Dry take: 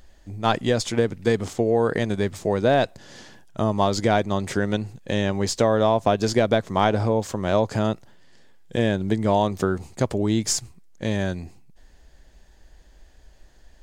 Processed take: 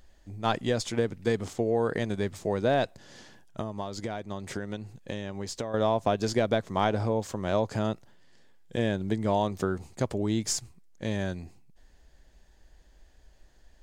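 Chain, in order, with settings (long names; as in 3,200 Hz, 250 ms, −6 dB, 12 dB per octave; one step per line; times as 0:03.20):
0:03.60–0:05.74: downward compressor, threshold −25 dBFS, peak gain reduction 10.5 dB
level −6 dB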